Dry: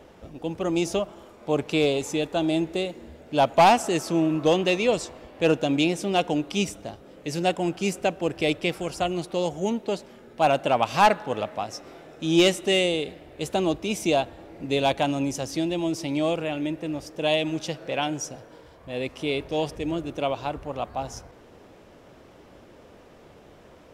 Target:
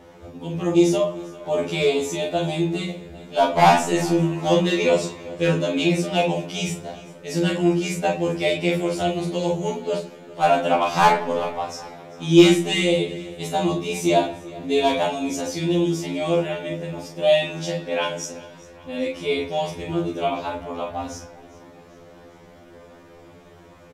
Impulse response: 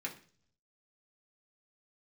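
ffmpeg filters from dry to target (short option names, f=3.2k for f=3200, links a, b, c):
-filter_complex "[0:a]bandreject=f=2.6k:w=18,aecho=1:1:396|792|1188:0.0944|0.0444|0.0209,asplit=2[a][b];[1:a]atrim=start_sample=2205,adelay=35[c];[b][c]afir=irnorm=-1:irlink=0,volume=-1.5dB[d];[a][d]amix=inputs=2:normalize=0,afftfilt=real='re*2*eq(mod(b,4),0)':imag='im*2*eq(mod(b,4),0)':win_size=2048:overlap=0.75,volume=3.5dB"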